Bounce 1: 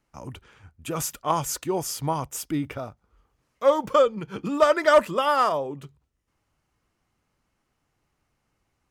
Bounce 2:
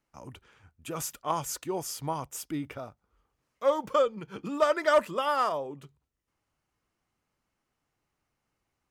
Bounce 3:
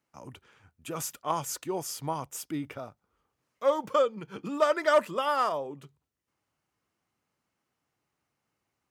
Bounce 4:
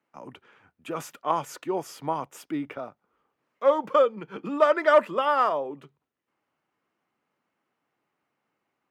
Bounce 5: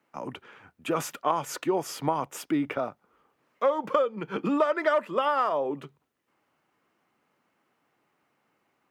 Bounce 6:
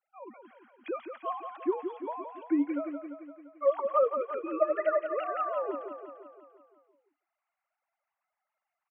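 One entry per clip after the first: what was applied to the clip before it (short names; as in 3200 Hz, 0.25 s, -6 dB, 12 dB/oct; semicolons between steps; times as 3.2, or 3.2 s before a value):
low shelf 160 Hz -4.5 dB; gain -5.5 dB
HPF 92 Hz 12 dB/oct
three-band isolator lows -17 dB, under 170 Hz, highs -14 dB, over 3200 Hz; gain +4.5 dB
compressor 6:1, threshold -28 dBFS, peak gain reduction 15 dB; gain +6.5 dB
sine-wave speech; on a send: feedback echo 0.172 s, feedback 59%, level -7.5 dB; on the sum: gain -4 dB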